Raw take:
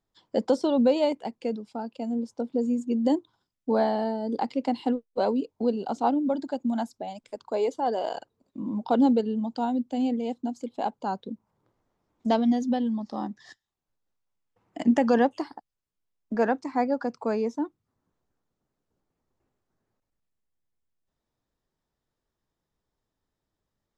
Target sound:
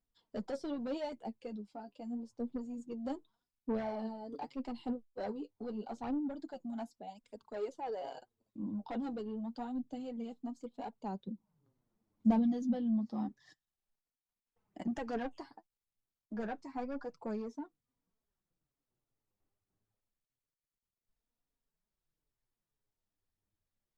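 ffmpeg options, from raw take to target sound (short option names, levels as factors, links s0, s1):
-filter_complex "[0:a]flanger=delay=4.1:depth=6:regen=30:speed=0.28:shape=sinusoidal,asoftclip=type=tanh:threshold=0.0596,asettb=1/sr,asplit=3[s0][s1][s2];[s0]atrim=end=11.274[s3];[s1]atrim=start=11.27:end=13.29,asetpts=PTS-STARTPTS,afade=t=in:d=0.004:c=qsin,afade=t=out:st=2.016:d=0.004:c=qsin,equalizer=f=200:w=1.1:g=10.5[s4];[s2]atrim=start=13.286[s5];[s3][s4]acrossfade=d=0.004:c1=hsin:c2=qsin[s6];[s6][s5]acrossfade=d=0.004:c1=qsin:c2=hsin,flanger=delay=0.1:depth=7.3:regen=44:speed=0.81:shape=sinusoidal,lowshelf=f=130:g=7,volume=0.562" -ar 48000 -c:a libopus -b:a 128k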